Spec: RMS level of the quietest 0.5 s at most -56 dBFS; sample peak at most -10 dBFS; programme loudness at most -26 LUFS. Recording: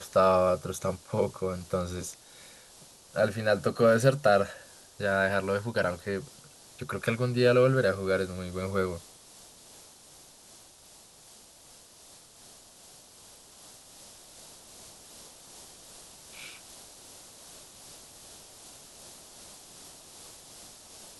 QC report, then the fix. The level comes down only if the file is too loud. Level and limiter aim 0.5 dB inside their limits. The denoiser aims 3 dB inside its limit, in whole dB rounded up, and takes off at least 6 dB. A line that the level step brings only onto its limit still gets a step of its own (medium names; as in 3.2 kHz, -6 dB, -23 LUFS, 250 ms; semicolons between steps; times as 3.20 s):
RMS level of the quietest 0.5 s -54 dBFS: fail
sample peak -9.5 dBFS: fail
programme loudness -27.5 LUFS: pass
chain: noise reduction 6 dB, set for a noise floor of -54 dBFS; peak limiter -10.5 dBFS